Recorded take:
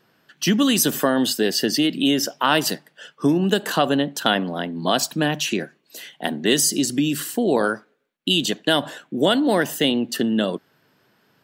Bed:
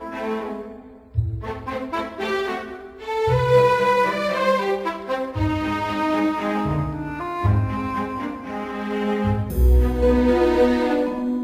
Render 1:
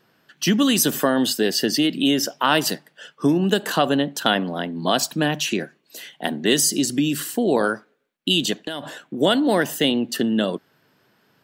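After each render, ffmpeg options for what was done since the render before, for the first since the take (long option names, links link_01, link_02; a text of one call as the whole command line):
ffmpeg -i in.wav -filter_complex "[0:a]asettb=1/sr,asplit=3[link_01][link_02][link_03];[link_01]atrim=end=8.564[link_04];[link_02]atrim=start=8.56:end=9.21,asetpts=PTS-STARTPTS,afade=type=in:duration=0.004:curve=qsin,afade=type=out:start_time=0.646:duration=0.004:curve=qsin,acompressor=threshold=-24dB:ratio=12:attack=3.2:release=140:knee=1:detection=peak[link_05];[link_03]atrim=start=9.206[link_06];[link_04][link_05]acrossfade=duration=0.004:curve1=hsin:curve2=qsin[link_07];[link_07][link_06]acrossfade=duration=0.004:curve1=qsin:curve2=hsin" out.wav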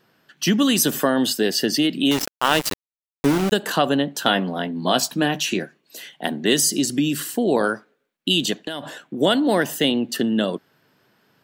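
ffmpeg -i in.wav -filter_complex "[0:a]asettb=1/sr,asplit=3[link_01][link_02][link_03];[link_01]atrim=end=2.114[link_04];[link_02]atrim=start=2.11:end=3.52,asetpts=PTS-STARTPTS,afade=type=in:duration=0.004:curve=qsin,afade=type=out:start_time=1.406:duration=0.004:curve=qsin,aeval=exprs='val(0)*gte(abs(val(0)),0.106)':channel_layout=same[link_05];[link_03]atrim=start=3.516[link_06];[link_04][link_05]acrossfade=duration=0.004:curve1=hsin:curve2=qsin[link_07];[link_07][link_06]acrossfade=duration=0.004:curve1=qsin:curve2=hsin,asettb=1/sr,asplit=3[link_08][link_09][link_10];[link_08]atrim=end=4.134[link_11];[link_09]atrim=start=4.13:end=5.59,asetpts=PTS-STARTPTS,afade=type=in:duration=0.004:curve=qsin,afade=type=out:start_time=1.456:duration=0.004:curve=qsin,asplit=2[link_12][link_13];[link_13]adelay=16,volume=-9dB[link_14];[link_12][link_14]amix=inputs=2:normalize=0,atrim=end_sample=64386[link_15];[link_10]atrim=start=5.586[link_16];[link_11][link_15]acrossfade=duration=0.004:curve1=hsin:curve2=qsin[link_17];[link_17][link_16]acrossfade=duration=0.004:curve1=qsin:curve2=hsin" out.wav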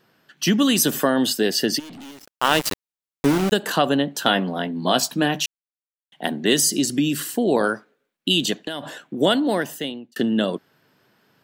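ffmpeg -i in.wav -filter_complex "[0:a]asplit=3[link_01][link_02][link_03];[link_01]afade=type=out:start_time=1.78:duration=0.02[link_04];[link_02]aeval=exprs='(tanh(79.4*val(0)+0.15)-tanh(0.15))/79.4':channel_layout=same,afade=type=in:start_time=1.78:duration=0.02,afade=type=out:start_time=2.38:duration=0.02[link_05];[link_03]afade=type=in:start_time=2.38:duration=0.02[link_06];[link_04][link_05][link_06]amix=inputs=3:normalize=0,asplit=4[link_07][link_08][link_09][link_10];[link_07]atrim=end=5.46,asetpts=PTS-STARTPTS,afade=type=out:start_time=5.456:duration=0.004:curve=hsin[link_11];[link_08]atrim=start=5.46:end=6.12,asetpts=PTS-STARTPTS,volume=0[link_12];[link_09]atrim=start=6.12:end=10.16,asetpts=PTS-STARTPTS,afade=type=in:duration=0.004:curve=hsin,afade=type=out:start_time=3.17:duration=0.87[link_13];[link_10]atrim=start=10.16,asetpts=PTS-STARTPTS,afade=type=in:duration=0.004:curve=hsin[link_14];[link_11][link_12][link_13][link_14]concat=n=4:v=0:a=1" out.wav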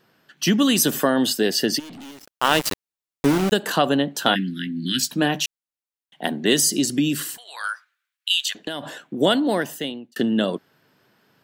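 ffmpeg -i in.wav -filter_complex "[0:a]asplit=3[link_01][link_02][link_03];[link_01]afade=type=out:start_time=4.34:duration=0.02[link_04];[link_02]asuperstop=centerf=730:order=12:qfactor=0.57,afade=type=in:start_time=4.34:duration=0.02,afade=type=out:start_time=5.1:duration=0.02[link_05];[link_03]afade=type=in:start_time=5.1:duration=0.02[link_06];[link_04][link_05][link_06]amix=inputs=3:normalize=0,asettb=1/sr,asplit=3[link_07][link_08][link_09];[link_07]atrim=end=7.374[link_10];[link_08]atrim=start=7.37:end=8.55,asetpts=PTS-STARTPTS,afade=type=in:duration=0.004:curve=qsin,afade=type=out:start_time=1.176:duration=0.004:curve=qsin,highpass=frequency=1300:width=0.5412,highpass=frequency=1300:width=1.3066[link_11];[link_09]atrim=start=8.546[link_12];[link_10][link_11]acrossfade=duration=0.004:curve1=hsin:curve2=qsin[link_13];[link_13][link_12]acrossfade=duration=0.004:curve1=qsin:curve2=hsin" out.wav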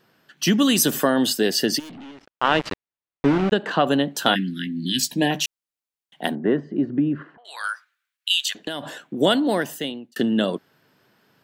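ffmpeg -i in.wav -filter_complex "[0:a]asettb=1/sr,asplit=3[link_01][link_02][link_03];[link_01]atrim=end=1.914[link_04];[link_02]atrim=start=1.91:end=3.87,asetpts=PTS-STARTPTS,afade=type=in:duration=0.004:curve=qsin,afade=type=out:start_time=1.956:duration=0.004:curve=qsin,lowpass=2800[link_05];[link_03]atrim=start=3.866[link_06];[link_04][link_05]acrossfade=duration=0.004:curve1=hsin:curve2=qsin[link_07];[link_07][link_06]acrossfade=duration=0.004:curve1=qsin:curve2=hsin,asettb=1/sr,asplit=3[link_08][link_09][link_10];[link_08]atrim=end=4.644[link_11];[link_09]atrim=start=4.64:end=5.31,asetpts=PTS-STARTPTS,afade=type=in:duration=0.004:curve=qsin,afade=type=out:start_time=0.666:duration=0.004:curve=qsin,asuperstop=centerf=1300:order=12:qfactor=2.2[link_12];[link_10]atrim=start=5.306[link_13];[link_11][link_12]acrossfade=duration=0.004:curve1=hsin:curve2=qsin[link_14];[link_14][link_13]acrossfade=duration=0.004:curve1=qsin:curve2=hsin,asettb=1/sr,asplit=3[link_15][link_16][link_17];[link_15]atrim=end=6.354[link_18];[link_16]atrim=start=6.35:end=7.45,asetpts=PTS-STARTPTS,afade=type=in:duration=0.004:curve=qsin,afade=type=out:start_time=1.096:duration=0.004:curve=qsin,lowpass=frequency=1500:width=0.5412,lowpass=frequency=1500:width=1.3066[link_19];[link_17]atrim=start=7.446[link_20];[link_18][link_19]acrossfade=duration=0.004:curve1=hsin:curve2=qsin[link_21];[link_21][link_20]acrossfade=duration=0.004:curve1=qsin:curve2=hsin" out.wav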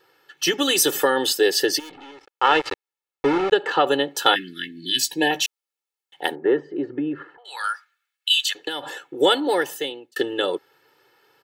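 ffmpeg -i in.wav -af "bass=frequency=250:gain=-13,treble=frequency=4000:gain=-2,aecho=1:1:2.3:0.99" out.wav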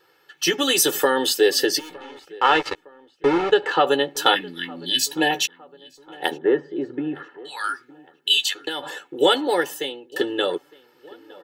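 ffmpeg -i in.wav -filter_complex "[0:a]asplit=2[link_01][link_02];[link_02]adelay=12,volume=-10dB[link_03];[link_01][link_03]amix=inputs=2:normalize=0,asplit=2[link_04][link_05];[link_05]adelay=911,lowpass=frequency=2300:poles=1,volume=-22dB,asplit=2[link_06][link_07];[link_07]adelay=911,lowpass=frequency=2300:poles=1,volume=0.52,asplit=2[link_08][link_09];[link_09]adelay=911,lowpass=frequency=2300:poles=1,volume=0.52,asplit=2[link_10][link_11];[link_11]adelay=911,lowpass=frequency=2300:poles=1,volume=0.52[link_12];[link_04][link_06][link_08][link_10][link_12]amix=inputs=5:normalize=0" out.wav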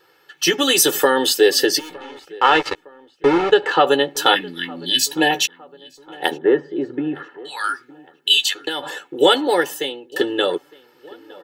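ffmpeg -i in.wav -af "volume=3.5dB,alimiter=limit=-1dB:level=0:latency=1" out.wav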